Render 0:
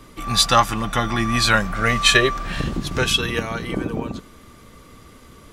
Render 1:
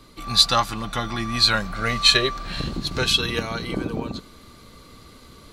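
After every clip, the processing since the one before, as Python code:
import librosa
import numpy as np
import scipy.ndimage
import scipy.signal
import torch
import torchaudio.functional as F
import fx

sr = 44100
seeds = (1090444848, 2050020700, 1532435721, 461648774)

y = fx.peak_eq(x, sr, hz=4200.0, db=13.0, octaves=0.27)
y = fx.notch(y, sr, hz=1800.0, q=19.0)
y = fx.rider(y, sr, range_db=4, speed_s=2.0)
y = F.gain(torch.from_numpy(y), -5.5).numpy()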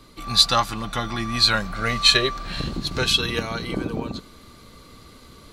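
y = x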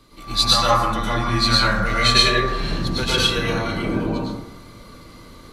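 y = fx.rev_plate(x, sr, seeds[0], rt60_s=0.91, hf_ratio=0.35, predelay_ms=95, drr_db=-7.5)
y = F.gain(torch.from_numpy(y), -4.0).numpy()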